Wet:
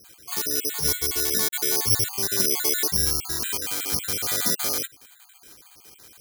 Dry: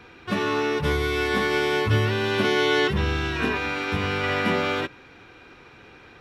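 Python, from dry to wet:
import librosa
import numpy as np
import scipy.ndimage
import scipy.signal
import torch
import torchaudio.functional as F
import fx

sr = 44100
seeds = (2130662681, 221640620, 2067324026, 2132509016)

y = fx.spec_dropout(x, sr, seeds[0], share_pct=38)
y = (np.kron(scipy.signal.resample_poly(y, 1, 8), np.eye(8)[0]) * 8)[:len(y)]
y = y * librosa.db_to_amplitude(-8.0)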